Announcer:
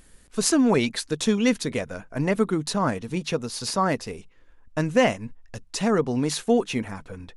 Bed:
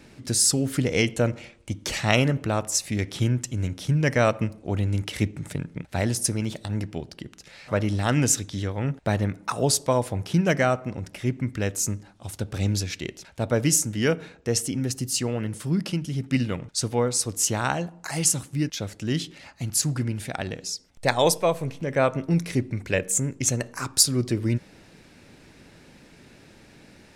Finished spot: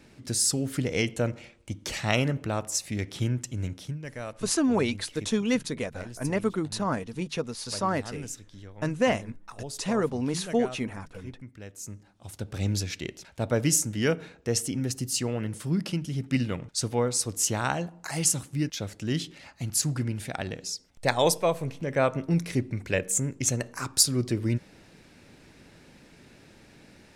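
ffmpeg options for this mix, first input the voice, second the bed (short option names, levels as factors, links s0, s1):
-filter_complex "[0:a]adelay=4050,volume=0.596[s0];[1:a]volume=3.16,afade=t=out:st=3.72:d=0.27:silence=0.237137,afade=t=in:st=11.74:d=1.04:silence=0.188365[s1];[s0][s1]amix=inputs=2:normalize=0"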